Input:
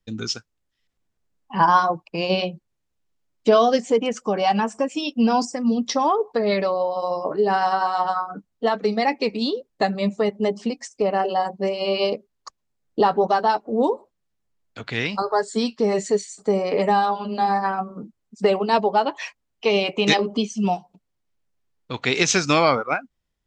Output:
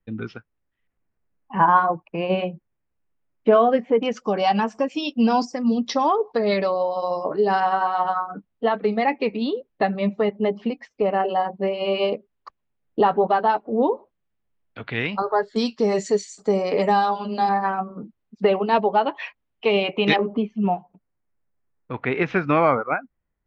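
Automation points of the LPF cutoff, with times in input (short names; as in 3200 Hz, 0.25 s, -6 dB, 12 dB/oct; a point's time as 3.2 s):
LPF 24 dB/oct
2400 Hz
from 4.03 s 5100 Hz
from 7.6 s 3200 Hz
from 15.56 s 7200 Hz
from 17.49 s 3400 Hz
from 20.16 s 2100 Hz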